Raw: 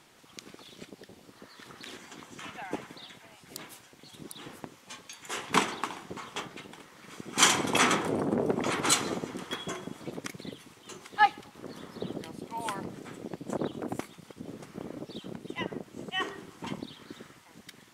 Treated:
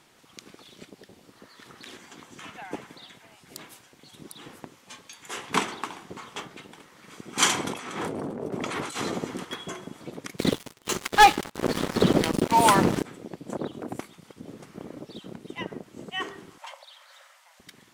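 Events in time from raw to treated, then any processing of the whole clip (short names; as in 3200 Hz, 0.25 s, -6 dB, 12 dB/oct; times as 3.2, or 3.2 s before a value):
7.64–9.45 negative-ratio compressor -33 dBFS
10.38–13.03 sample leveller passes 5
16.58–17.6 brick-wall FIR high-pass 520 Hz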